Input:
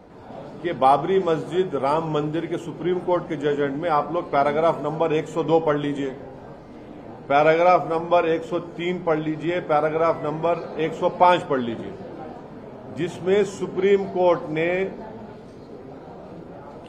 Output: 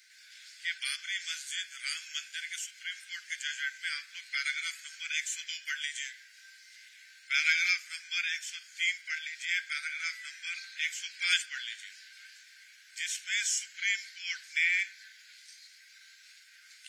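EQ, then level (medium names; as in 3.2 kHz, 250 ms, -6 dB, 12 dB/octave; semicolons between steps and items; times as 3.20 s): rippled Chebyshev high-pass 1.5 kHz, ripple 6 dB; treble shelf 2 kHz +11 dB; treble shelf 4.1 kHz +7 dB; -2.0 dB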